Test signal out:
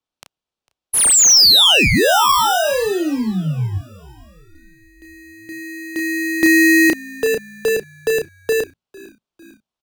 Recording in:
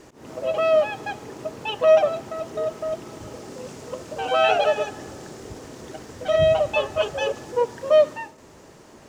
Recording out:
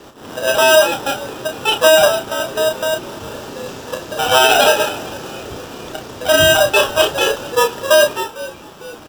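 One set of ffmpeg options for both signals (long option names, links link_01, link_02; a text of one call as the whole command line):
ffmpeg -i in.wav -filter_complex "[0:a]tiltshelf=frequency=970:gain=-6,acrossover=split=160|350|2300[link_01][link_02][link_03][link_04];[link_03]acrusher=samples=20:mix=1:aa=0.000001[link_05];[link_04]adynamicsmooth=sensitivity=3.5:basefreq=3200[link_06];[link_01][link_02][link_05][link_06]amix=inputs=4:normalize=0,asplit=2[link_07][link_08];[link_08]adelay=32,volume=-6dB[link_09];[link_07][link_09]amix=inputs=2:normalize=0,asplit=5[link_10][link_11][link_12][link_13][link_14];[link_11]adelay=451,afreqshift=-58,volume=-22dB[link_15];[link_12]adelay=902,afreqshift=-116,volume=-27.2dB[link_16];[link_13]adelay=1353,afreqshift=-174,volume=-32.4dB[link_17];[link_14]adelay=1804,afreqshift=-232,volume=-37.6dB[link_18];[link_10][link_15][link_16][link_17][link_18]amix=inputs=5:normalize=0,alimiter=level_in=11.5dB:limit=-1dB:release=50:level=0:latency=1,volume=-1dB" out.wav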